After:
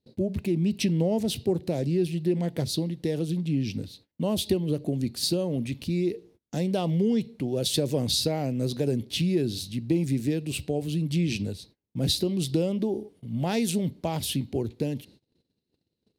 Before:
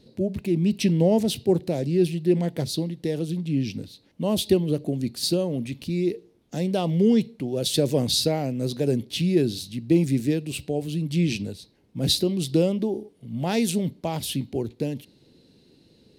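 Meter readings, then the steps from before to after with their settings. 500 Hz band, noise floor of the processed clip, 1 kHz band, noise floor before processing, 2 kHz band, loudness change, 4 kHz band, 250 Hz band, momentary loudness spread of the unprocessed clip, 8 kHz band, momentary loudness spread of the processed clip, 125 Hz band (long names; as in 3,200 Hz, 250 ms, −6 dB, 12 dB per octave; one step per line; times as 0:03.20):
−4.0 dB, −81 dBFS, −3.0 dB, −60 dBFS, −2.5 dB, −3.0 dB, −2.0 dB, −3.0 dB, 10 LU, −2.0 dB, 7 LU, −2.0 dB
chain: noise gate −52 dBFS, range −27 dB
parametric band 80 Hz +5 dB 0.93 octaves
downward compressor 2.5 to 1, threshold −23 dBFS, peak gain reduction 7 dB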